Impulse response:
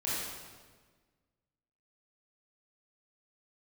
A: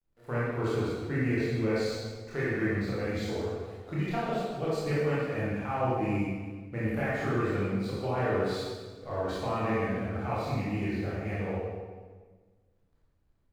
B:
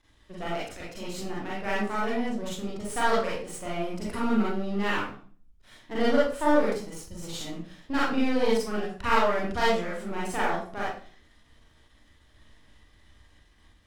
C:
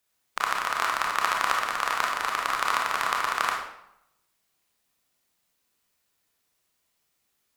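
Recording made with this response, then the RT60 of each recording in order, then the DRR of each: A; 1.5 s, 0.40 s, 0.80 s; -9.0 dB, -7.0 dB, -1.0 dB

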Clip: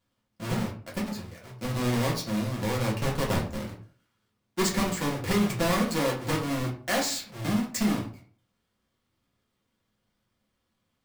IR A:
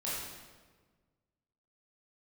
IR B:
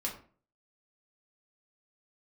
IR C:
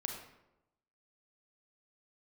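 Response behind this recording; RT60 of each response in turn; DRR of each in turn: B; 1.4 s, 0.40 s, 0.95 s; -8.5 dB, -3.0 dB, 2.0 dB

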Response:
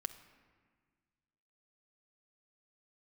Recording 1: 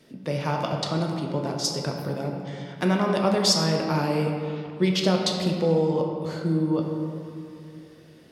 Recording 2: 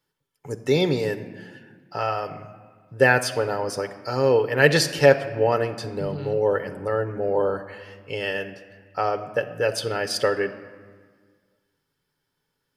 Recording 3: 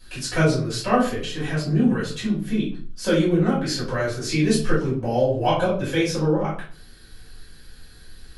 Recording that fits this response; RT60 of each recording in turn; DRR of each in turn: 2; 2.7 s, 1.6 s, 0.45 s; 1.0 dB, 7.5 dB, -10.0 dB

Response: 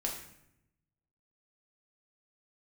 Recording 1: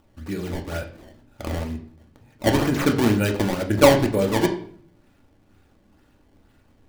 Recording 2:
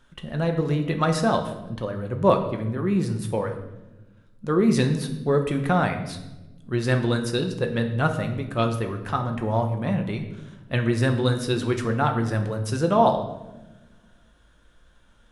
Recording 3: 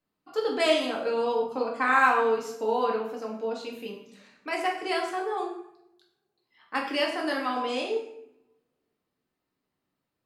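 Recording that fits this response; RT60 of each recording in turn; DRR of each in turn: 3; 0.55 s, 1.1 s, 0.80 s; 2.0 dB, 4.0 dB, -1.5 dB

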